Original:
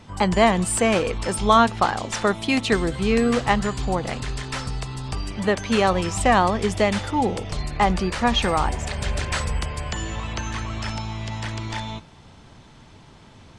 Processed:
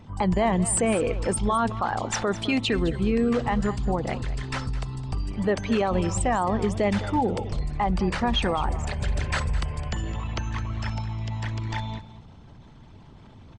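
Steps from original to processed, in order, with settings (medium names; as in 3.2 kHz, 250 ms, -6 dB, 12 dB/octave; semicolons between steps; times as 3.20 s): resonances exaggerated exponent 1.5; peak limiter -15 dBFS, peak gain reduction 10.5 dB; delay 211 ms -15 dB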